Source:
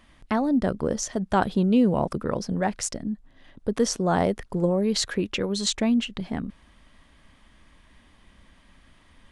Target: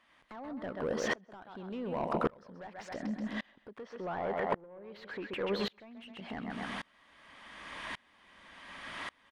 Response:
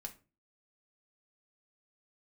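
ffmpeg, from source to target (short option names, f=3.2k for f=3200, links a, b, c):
-filter_complex "[0:a]tiltshelf=f=830:g=-5,acrossover=split=3800[a][b];[b]acompressor=threshold=-57dB:ratio=4:attack=1:release=60[c];[a][c]amix=inputs=2:normalize=0,aecho=1:1:131|262|393|524:0.266|0.0905|0.0308|0.0105,acompressor=threshold=-38dB:ratio=12,asplit=2[d][e];[e]highpass=f=720:p=1,volume=33dB,asoftclip=type=tanh:threshold=-12.5dB[f];[d][f]amix=inputs=2:normalize=0,lowpass=f=1.1k:p=1,volume=-6dB,asettb=1/sr,asplit=3[g][h][i];[g]atrim=end=3.834[j];[h]atrim=start=3.83:end=5.97,asetpts=PTS-STARTPTS,afade=t=in:d=0.004:c=qsin,afade=t=out:st=2.136:d=0.004:c=qsin,bass=f=250:g=-3,treble=f=4k:g=-9[k];[i]atrim=start=5.966[l];[j][k]acrossfade=d=0.004:c1=hsin:c2=qsin[m];[m][l]acrossfade=d=0.004:c1=qsin:c2=hsin,aeval=exprs='val(0)*pow(10,-30*if(lt(mod(-0.88*n/s,1),2*abs(-0.88)/1000),1-mod(-0.88*n/s,1)/(2*abs(-0.88)/1000),(mod(-0.88*n/s,1)-2*abs(-0.88)/1000)/(1-2*abs(-0.88)/1000))/20)':c=same,volume=-1dB"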